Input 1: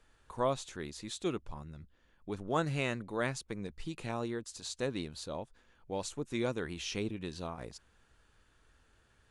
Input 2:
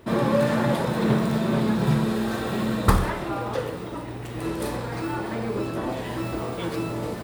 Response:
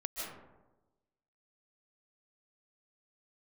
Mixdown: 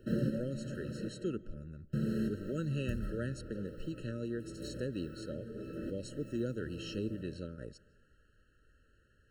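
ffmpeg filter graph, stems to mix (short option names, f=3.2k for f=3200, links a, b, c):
-filter_complex "[0:a]highshelf=f=2.9k:g=-7.5,volume=0dB,asplit=3[a][b][c];[b]volume=-24dB[d];[1:a]lowshelf=f=390:g=6.5,volume=-12.5dB,asplit=3[e][f][g];[e]atrim=end=1.09,asetpts=PTS-STARTPTS,afade=t=out:st=1.086:d=0.004:c=hsin[h];[f]atrim=start=1.09:end=1.93,asetpts=PTS-STARTPTS,volume=0[i];[g]atrim=start=1.93,asetpts=PTS-STARTPTS,afade=t=in:d=0.004:c=hsin[j];[h][i][j]concat=n=3:v=0:a=1,asplit=2[k][l];[l]volume=-14.5dB[m];[c]apad=whole_len=318850[n];[k][n]sidechaincompress=threshold=-50dB:ratio=8:attack=9.5:release=576[o];[2:a]atrim=start_sample=2205[p];[d][m]amix=inputs=2:normalize=0[q];[q][p]afir=irnorm=-1:irlink=0[r];[a][o][r]amix=inputs=3:normalize=0,acrossover=split=330|3000[s][t][u];[t]acompressor=threshold=-39dB:ratio=6[v];[s][v][u]amix=inputs=3:normalize=0,afftfilt=real='re*eq(mod(floor(b*sr/1024/640),2),0)':imag='im*eq(mod(floor(b*sr/1024/640),2),0)':win_size=1024:overlap=0.75"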